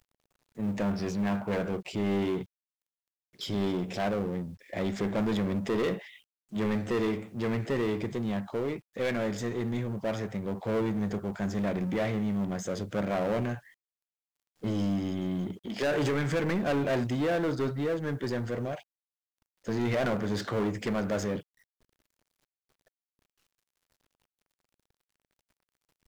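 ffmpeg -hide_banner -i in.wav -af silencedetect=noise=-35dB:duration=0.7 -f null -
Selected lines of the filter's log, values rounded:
silence_start: 2.43
silence_end: 3.41 | silence_duration: 0.98
silence_start: 13.56
silence_end: 14.64 | silence_duration: 1.07
silence_start: 18.75
silence_end: 19.68 | silence_duration: 0.93
silence_start: 21.39
silence_end: 26.07 | silence_duration: 4.68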